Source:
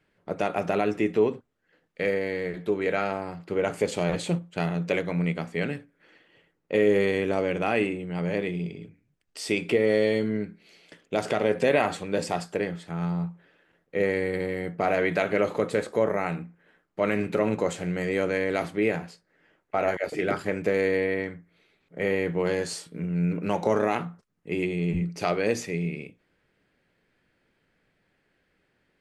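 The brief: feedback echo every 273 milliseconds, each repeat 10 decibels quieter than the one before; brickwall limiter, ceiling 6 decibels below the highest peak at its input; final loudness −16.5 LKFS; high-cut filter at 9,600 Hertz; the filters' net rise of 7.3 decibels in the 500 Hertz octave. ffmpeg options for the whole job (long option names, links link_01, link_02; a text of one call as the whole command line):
ffmpeg -i in.wav -af "lowpass=9600,equalizer=frequency=500:width_type=o:gain=8.5,alimiter=limit=-11.5dB:level=0:latency=1,aecho=1:1:273|546|819|1092:0.316|0.101|0.0324|0.0104,volume=6.5dB" out.wav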